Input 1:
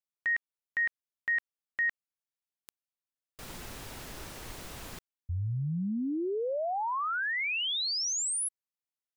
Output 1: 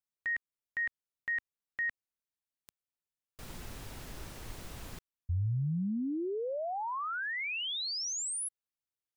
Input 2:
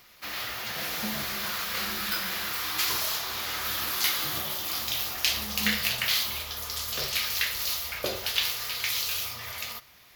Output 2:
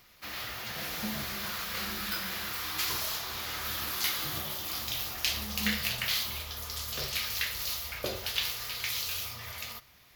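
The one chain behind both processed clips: bass shelf 200 Hz +7 dB; trim -4.5 dB

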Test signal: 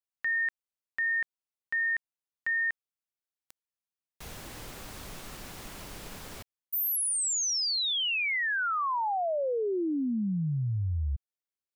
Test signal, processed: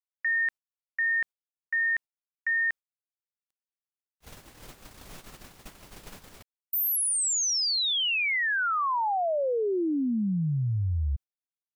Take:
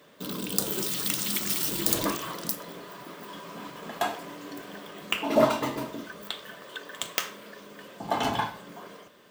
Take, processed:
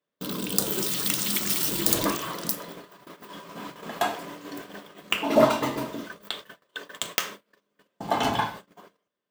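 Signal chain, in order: gate -41 dBFS, range -33 dB; trim +2.5 dB

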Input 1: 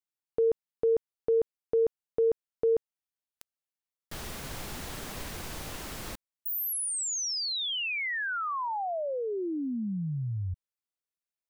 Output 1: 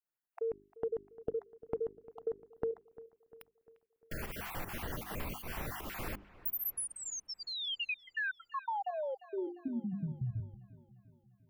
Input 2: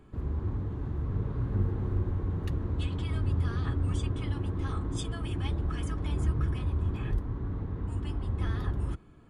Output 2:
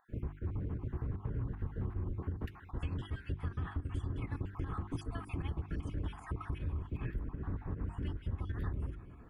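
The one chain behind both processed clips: random holes in the spectrogram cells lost 38%; dynamic bell 540 Hz, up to -6 dB, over -47 dBFS, Q 2; volume shaper 155 bpm, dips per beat 1, -11 dB, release 132 ms; high-order bell 5.7 kHz -10.5 dB; hum notches 50/100/150/200/250/300/350/400 Hz; compression 6:1, threshold -36 dBFS; on a send: feedback echo behind a low-pass 349 ms, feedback 54%, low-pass 3.1 kHz, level -19 dB; on the sum: trim +2.5 dB

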